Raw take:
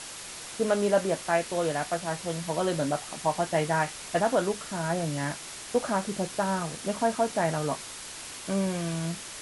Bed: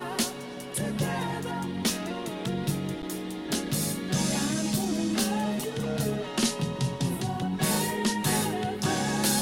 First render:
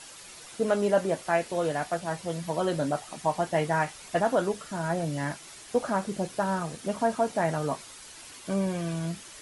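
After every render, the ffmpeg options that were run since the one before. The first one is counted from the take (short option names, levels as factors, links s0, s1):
-af "afftdn=nr=8:nf=-41"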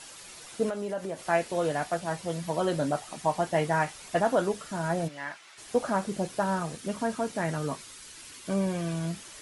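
-filter_complex "[0:a]asettb=1/sr,asplit=3[s0][s1][s2];[s0]atrim=end=0.694[s3];[s1]atrim=start=0.69:end=1.22,asetpts=PTS-STARTPTS,afade=t=in:d=0.004:c=qsin,afade=t=out:st=0.526:d=0.004:c=qsin,acompressor=threshold=0.0251:ratio=3:attack=3.2:release=140:knee=1:detection=peak[s4];[s2]atrim=start=1.216[s5];[s3][s4]acrossfade=d=0.004:c1=hsin:c2=qsin[s6];[s6][s5]acrossfade=d=0.004:c1=qsin:c2=hsin,asplit=3[s7][s8][s9];[s7]afade=t=out:st=5.07:d=0.02[s10];[s8]bandpass=f=1800:t=q:w=0.8,afade=t=in:st=5.07:d=0.02,afade=t=out:st=5.57:d=0.02[s11];[s9]afade=t=in:st=5.57:d=0.02[s12];[s10][s11][s12]amix=inputs=3:normalize=0,asettb=1/sr,asplit=3[s13][s14][s15];[s13]atrim=end=6.784[s16];[s14]atrim=start=6.78:end=8.48,asetpts=PTS-STARTPTS,afade=t=in:d=0.004:c=qsin,afade=t=out:st=1.696:d=0.004:c=qsin,equalizer=f=730:w=1.5:g=-7[s17];[s15]atrim=start=8.476[s18];[s16][s17]acrossfade=d=0.004:c1=hsin:c2=qsin[s19];[s19][s18]acrossfade=d=0.004:c1=qsin:c2=hsin"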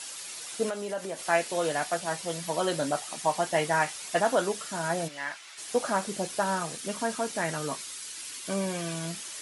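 -af "highpass=f=250:p=1,highshelf=f=2200:g=8"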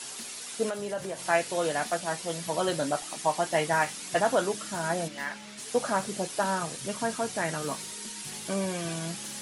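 -filter_complex "[1:a]volume=0.1[s0];[0:a][s0]amix=inputs=2:normalize=0"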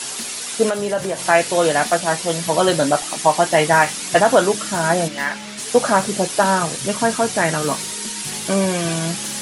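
-af "volume=3.98,alimiter=limit=0.794:level=0:latency=1"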